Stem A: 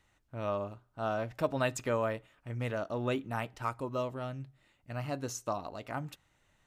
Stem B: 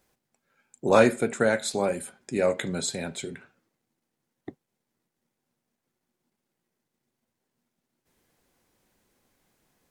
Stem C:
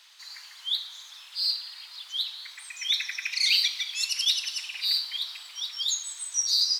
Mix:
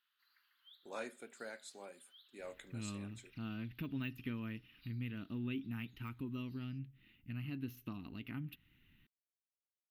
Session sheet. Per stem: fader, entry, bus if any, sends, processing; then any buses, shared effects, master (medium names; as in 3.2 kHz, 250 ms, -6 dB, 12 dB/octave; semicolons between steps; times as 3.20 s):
+2.5 dB, 2.40 s, bus A, no send, de-esser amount 95%
-18.0 dB, 0.00 s, no bus, no send, high-pass 1.2 kHz 6 dB/octave; gate -44 dBFS, range -18 dB; random flutter of the level, depth 60%
-16.0 dB, 0.00 s, bus A, no send, resonant high shelf 1.8 kHz -8.5 dB, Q 3; compression 3:1, threshold -41 dBFS, peak gain reduction 9 dB
bus A: 0.0 dB, FFT filter 230 Hz 0 dB, 410 Hz -11 dB, 580 Hz -27 dB, 2.8 kHz +4 dB, 8.1 kHz -29 dB, 12 kHz +4 dB; compression 2:1, threshold -49 dBFS, peak gain reduction 11.5 dB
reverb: none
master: peaking EQ 270 Hz +7 dB 1.1 oct